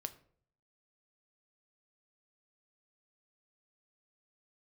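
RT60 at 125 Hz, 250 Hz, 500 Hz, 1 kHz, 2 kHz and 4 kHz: 0.80 s, 0.60 s, 0.65 s, 0.50 s, 0.40 s, 0.35 s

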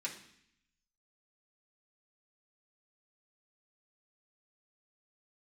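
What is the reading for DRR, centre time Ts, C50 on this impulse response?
-5.0 dB, 18 ms, 9.0 dB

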